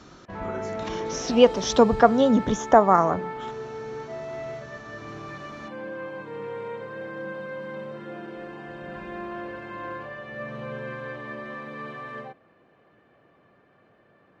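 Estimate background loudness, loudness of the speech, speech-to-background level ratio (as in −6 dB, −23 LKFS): −35.5 LKFS, −20.0 LKFS, 15.5 dB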